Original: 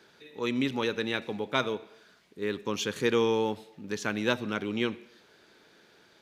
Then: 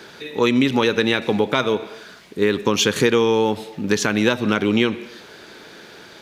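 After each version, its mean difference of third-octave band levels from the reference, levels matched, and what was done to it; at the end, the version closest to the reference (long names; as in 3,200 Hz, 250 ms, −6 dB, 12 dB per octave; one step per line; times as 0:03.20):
3.5 dB: downward compressor 6 to 1, threshold −31 dBFS, peak gain reduction 10.5 dB
boost into a limiter +20 dB
level −2.5 dB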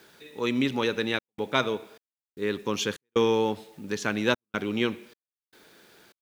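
5.0 dB: background noise white −67 dBFS
gate pattern "xxxxxx.xxx..xxx." 76 BPM −60 dB
level +3 dB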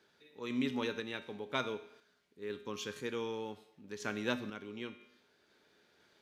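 2.0 dB: tuned comb filter 83 Hz, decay 0.73 s, harmonics odd, mix 70%
sample-and-hold tremolo 2 Hz
level +2 dB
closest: third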